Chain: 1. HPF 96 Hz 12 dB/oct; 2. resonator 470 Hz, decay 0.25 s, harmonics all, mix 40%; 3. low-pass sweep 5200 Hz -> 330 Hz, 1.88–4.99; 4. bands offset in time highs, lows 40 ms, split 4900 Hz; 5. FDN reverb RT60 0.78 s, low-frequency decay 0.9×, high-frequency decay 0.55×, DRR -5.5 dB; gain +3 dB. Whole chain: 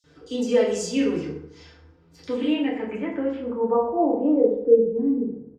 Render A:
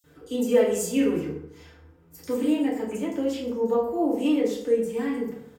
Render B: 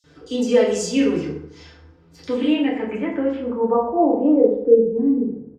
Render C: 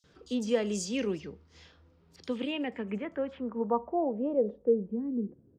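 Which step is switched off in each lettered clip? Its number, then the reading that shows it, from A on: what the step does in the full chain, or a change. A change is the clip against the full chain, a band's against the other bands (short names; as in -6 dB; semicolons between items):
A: 3, 1 kHz band -3.5 dB; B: 2, loudness change +3.5 LU; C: 5, echo-to-direct 36.0 dB to 29.5 dB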